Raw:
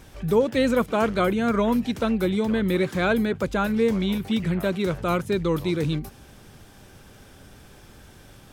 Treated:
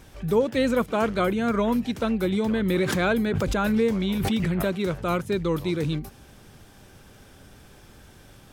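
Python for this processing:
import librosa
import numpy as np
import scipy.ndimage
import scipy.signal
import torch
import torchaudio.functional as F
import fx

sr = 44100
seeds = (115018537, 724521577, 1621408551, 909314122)

y = fx.pre_swell(x, sr, db_per_s=20.0, at=(2.32, 4.69))
y = F.gain(torch.from_numpy(y), -1.5).numpy()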